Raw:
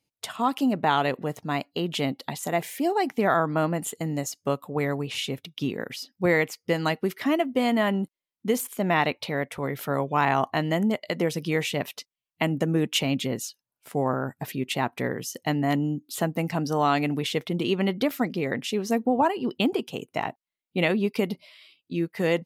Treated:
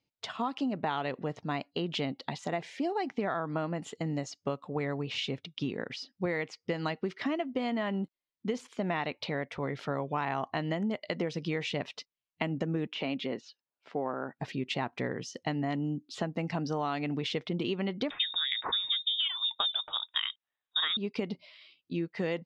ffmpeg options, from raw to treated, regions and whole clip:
ffmpeg -i in.wav -filter_complex "[0:a]asettb=1/sr,asplit=3[link_01][link_02][link_03];[link_01]atrim=end=12.874[link_04];[link_02]atrim=start=12.87:end=14.4,asetpts=PTS-STARTPTS,afade=type=in:duration=0.004:curve=qsin,afade=type=out:start_time=1.526:duration=0.004:curve=qsin,deesser=0.7,highpass=250,lowpass=4200[link_05];[link_03]atrim=start=14.396[link_06];[link_04][link_05]acrossfade=duration=0.004:curve1=hsin:curve2=qsin[link_07];[link_07][link_06]acrossfade=duration=0.004:curve1=qsin:curve2=hsin,asettb=1/sr,asplit=3[link_08][link_09][link_10];[link_08]atrim=end=18.104[link_11];[link_09]atrim=start=18.1:end=20.97,asetpts=PTS-STARTPTS,afade=type=in:duration=0.004:curve=qsin,afade=type=out:start_time=2.866:duration=0.004:curve=qsin,acontrast=72,lowpass=frequency=3300:width_type=q:width=0.5098,lowpass=frequency=3300:width_type=q:width=0.6013,lowpass=frequency=3300:width_type=q:width=0.9,lowpass=frequency=3300:width_type=q:width=2.563,afreqshift=-3900[link_12];[link_10]atrim=start=20.966[link_13];[link_11][link_12]acrossfade=duration=0.004:curve1=hsin:curve2=qsin[link_14];[link_14][link_13]acrossfade=duration=0.004:curve1=qsin:curve2=hsin,lowpass=frequency=5500:width=0.5412,lowpass=frequency=5500:width=1.3066,acompressor=threshold=-25dB:ratio=6,volume=-3dB" out.wav

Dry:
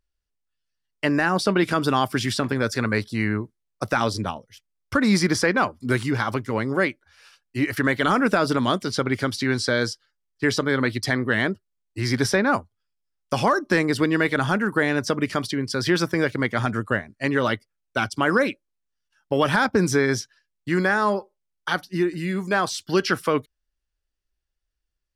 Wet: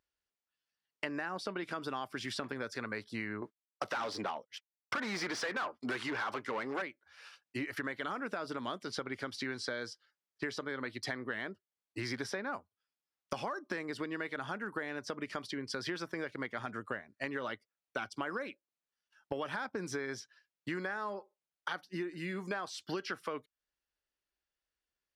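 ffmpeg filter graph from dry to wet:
ffmpeg -i in.wav -filter_complex "[0:a]asettb=1/sr,asplit=3[link_01][link_02][link_03];[link_01]atrim=end=3.424[link_04];[link_02]atrim=start=3.42:end=6.82,asetpts=PTS-STARTPTS,afade=type=in:duration=0.004:curve=qsin,afade=type=out:start_time=3.396:duration=0.004:curve=qsin,agate=range=-33dB:threshold=-43dB:ratio=3:release=100:detection=peak,asplit=2[link_05][link_06];[link_06]highpass=frequency=720:poles=1,volume=22dB,asoftclip=type=tanh:threshold=-8.5dB[link_07];[link_05][link_07]amix=inputs=2:normalize=0,lowpass=frequency=3200:poles=1,volume=-6dB,asoftclip=type=hard:threshold=-13.5dB[link_08];[link_03]atrim=start=6.816[link_09];[link_04][link_08]acrossfade=duration=0.004:curve1=hsin:curve2=qsin[link_10];[link_10][link_09]acrossfade=duration=0.004:curve1=qsin:curve2=hsin,highpass=frequency=420:poles=1,highshelf=frequency=6200:gain=-11.5,acompressor=threshold=-36dB:ratio=6" out.wav

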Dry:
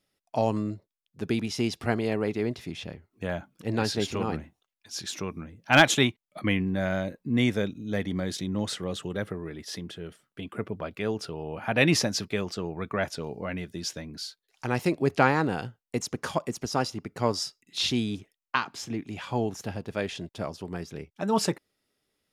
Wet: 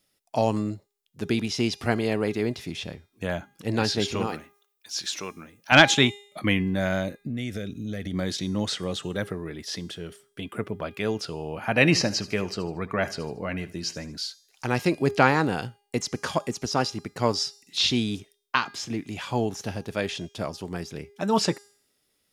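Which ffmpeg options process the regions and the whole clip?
ffmpeg -i in.wav -filter_complex "[0:a]asettb=1/sr,asplit=3[link_01][link_02][link_03];[link_01]atrim=end=4.274[link_04];[link_02]atrim=start=4.27:end=5.72,asetpts=PTS-STARTPTS,afade=type=in:duration=0.004:curve=qsin,afade=type=out:start_time=1.446:duration=0.004:curve=qsin,lowpass=frequency=2200:poles=1,aemphasis=mode=production:type=riaa[link_05];[link_03]atrim=start=5.716[link_06];[link_04][link_05]acrossfade=duration=0.004:curve1=hsin:curve2=qsin[link_07];[link_07][link_06]acrossfade=duration=0.004:curve1=qsin:curve2=hsin,asettb=1/sr,asplit=3[link_08][link_09][link_10];[link_08]atrim=end=7.234[link_11];[link_09]atrim=start=7.23:end=8.14,asetpts=PTS-STARTPTS,afade=type=in:duration=0.004:curve=qsin,afade=type=out:start_time=0.906:duration=0.004:curve=qsin,lowshelf=frequency=110:gain=10,acompressor=threshold=-29dB:ratio=8:attack=3.2:release=140:knee=1:detection=peak,asuperstop=centerf=950:order=4:qfactor=2[link_12];[link_10]atrim=start=8.136[link_13];[link_11][link_12]acrossfade=duration=0.004:curve1=hsin:curve2=qsin[link_14];[link_14][link_13]acrossfade=duration=0.004:curve1=qsin:curve2=hsin,asettb=1/sr,asplit=3[link_15][link_16][link_17];[link_15]atrim=end=11.654[link_18];[link_16]atrim=start=11.65:end=14.16,asetpts=PTS-STARTPTS,afade=type=in:duration=0.004:curve=qsin,afade=type=out:start_time=2.506:duration=0.004:curve=qsin,asuperstop=centerf=3500:order=4:qfactor=7.7,highshelf=frequency=5600:gain=-4.5,aecho=1:1:76|152|228:0.126|0.0491|0.0191,atrim=end_sample=110691[link_19];[link_17]atrim=start=14.156[link_20];[link_18][link_19]acrossfade=duration=0.004:curve1=hsin:curve2=qsin[link_21];[link_21][link_20]acrossfade=duration=0.004:curve1=qsin:curve2=hsin,bandreject=frequency=406.5:width_type=h:width=4,bandreject=frequency=813:width_type=h:width=4,bandreject=frequency=1219.5:width_type=h:width=4,bandreject=frequency=1626:width_type=h:width=4,bandreject=frequency=2032.5:width_type=h:width=4,bandreject=frequency=2439:width_type=h:width=4,bandreject=frequency=2845.5:width_type=h:width=4,bandreject=frequency=3252:width_type=h:width=4,bandreject=frequency=3658.5:width_type=h:width=4,bandreject=frequency=4065:width_type=h:width=4,bandreject=frequency=4471.5:width_type=h:width=4,bandreject=frequency=4878:width_type=h:width=4,bandreject=frequency=5284.5:width_type=h:width=4,bandreject=frequency=5691:width_type=h:width=4,bandreject=frequency=6097.5:width_type=h:width=4,bandreject=frequency=6504:width_type=h:width=4,bandreject=frequency=6910.5:width_type=h:width=4,bandreject=frequency=7317:width_type=h:width=4,bandreject=frequency=7723.5:width_type=h:width=4,bandreject=frequency=8130:width_type=h:width=4,bandreject=frequency=8536.5:width_type=h:width=4,bandreject=frequency=8943:width_type=h:width=4,bandreject=frequency=9349.5:width_type=h:width=4,bandreject=frequency=9756:width_type=h:width=4,bandreject=frequency=10162.5:width_type=h:width=4,bandreject=frequency=10569:width_type=h:width=4,bandreject=frequency=10975.5:width_type=h:width=4,bandreject=frequency=11382:width_type=h:width=4,bandreject=frequency=11788.5:width_type=h:width=4,bandreject=frequency=12195:width_type=h:width=4,bandreject=frequency=12601.5:width_type=h:width=4,acrossover=split=6200[link_22][link_23];[link_23]acompressor=threshold=-56dB:ratio=4:attack=1:release=60[link_24];[link_22][link_24]amix=inputs=2:normalize=0,highshelf=frequency=4200:gain=8.5,volume=2dB" out.wav

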